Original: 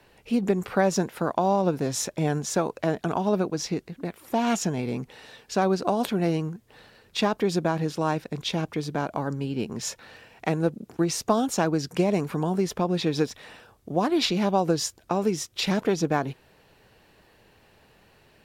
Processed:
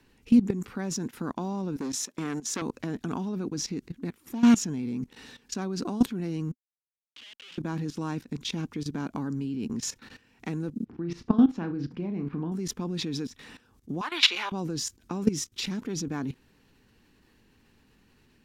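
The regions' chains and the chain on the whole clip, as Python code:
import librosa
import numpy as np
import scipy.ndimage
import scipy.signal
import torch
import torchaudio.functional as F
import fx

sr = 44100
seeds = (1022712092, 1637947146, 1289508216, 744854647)

y = fx.chain(x, sr, fx.highpass(hz=270.0, slope=12),
    fx.transformer_sat(knee_hz=1600.0), at=(1.76, 2.62))
y = fx.chain(y, sr, fx.curve_eq(hz=(110.0, 240.0, 350.0, 540.0, 1300.0, 3000.0, 4400.0, 10000.0, 14000.0), db=(0, -20, -9, 12, -6, -20, -7, -5, 2)),
    fx.schmitt(flips_db=-35.0),
    fx.bandpass_q(hz=3000.0, q=5.2), at=(6.52, 7.58))
y = fx.chain(y, sr, fx.air_absorb(metres=370.0),
    fx.room_flutter(wall_m=6.0, rt60_s=0.23), at=(10.85, 12.52))
y = fx.chain(y, sr, fx.highpass(hz=520.0, slope=24),
    fx.band_shelf(hz=1800.0, db=11.0, octaves=2.4), at=(14.01, 14.52))
y = fx.graphic_eq_15(y, sr, hz=(250, 630, 6300), db=(11, -11, 4))
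y = fx.level_steps(y, sr, step_db=16)
y = fx.low_shelf(y, sr, hz=72.0, db=8.5)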